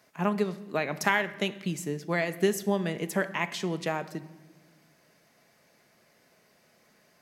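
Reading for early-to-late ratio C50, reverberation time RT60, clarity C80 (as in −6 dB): 15.5 dB, 1.2 s, 17.0 dB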